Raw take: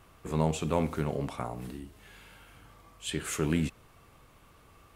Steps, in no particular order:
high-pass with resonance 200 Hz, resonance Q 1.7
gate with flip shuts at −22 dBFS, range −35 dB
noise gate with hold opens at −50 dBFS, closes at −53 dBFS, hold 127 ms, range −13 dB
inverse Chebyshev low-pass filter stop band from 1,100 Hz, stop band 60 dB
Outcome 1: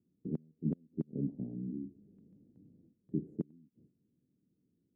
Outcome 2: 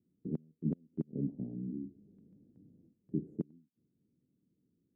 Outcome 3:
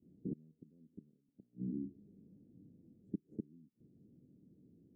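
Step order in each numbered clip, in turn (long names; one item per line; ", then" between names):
inverse Chebyshev low-pass filter, then noise gate with hold, then gate with flip, then high-pass with resonance
inverse Chebyshev low-pass filter, then gate with flip, then noise gate with hold, then high-pass with resonance
gate with flip, then high-pass with resonance, then noise gate with hold, then inverse Chebyshev low-pass filter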